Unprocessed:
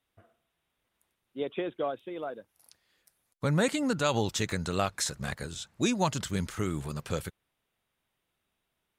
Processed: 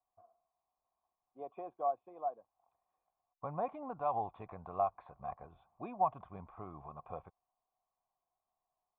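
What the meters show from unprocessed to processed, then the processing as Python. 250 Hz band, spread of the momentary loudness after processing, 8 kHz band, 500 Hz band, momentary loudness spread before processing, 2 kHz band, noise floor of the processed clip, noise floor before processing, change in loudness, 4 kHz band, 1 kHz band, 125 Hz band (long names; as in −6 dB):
−19.0 dB, 16 LU, below −40 dB, −8.0 dB, 11 LU, −25.0 dB, below −85 dBFS, −82 dBFS, −8.5 dB, below −40 dB, −0.5 dB, −19.0 dB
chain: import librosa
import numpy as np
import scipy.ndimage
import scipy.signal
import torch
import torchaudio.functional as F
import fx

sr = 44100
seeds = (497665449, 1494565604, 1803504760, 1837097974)

y = fx.formant_cascade(x, sr, vowel='a')
y = fx.low_shelf(y, sr, hz=61.0, db=11.5)
y = y * librosa.db_to_amplitude(6.5)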